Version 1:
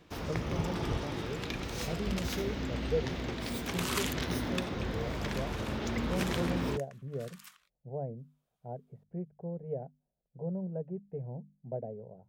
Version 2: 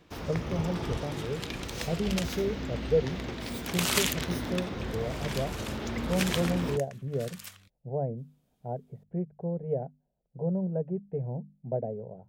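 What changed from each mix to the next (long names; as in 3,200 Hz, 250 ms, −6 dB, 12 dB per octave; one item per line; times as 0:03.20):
speech +6.5 dB
second sound: remove four-pole ladder high-pass 900 Hz, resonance 45%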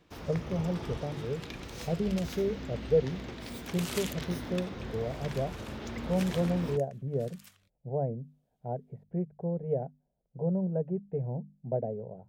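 first sound −5.0 dB
second sound −11.0 dB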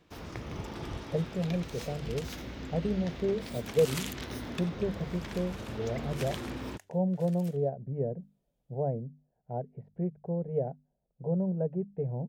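speech: entry +0.85 s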